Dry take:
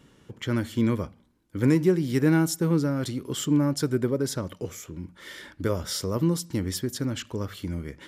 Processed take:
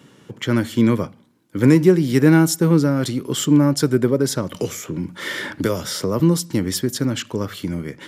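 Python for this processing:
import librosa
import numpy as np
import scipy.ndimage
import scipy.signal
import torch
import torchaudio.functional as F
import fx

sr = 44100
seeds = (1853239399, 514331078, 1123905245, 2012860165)

y = scipy.signal.sosfilt(scipy.signal.butter(4, 110.0, 'highpass', fs=sr, output='sos'), x)
y = fx.band_squash(y, sr, depth_pct=70, at=(4.54, 6.2))
y = y * 10.0 ** (8.0 / 20.0)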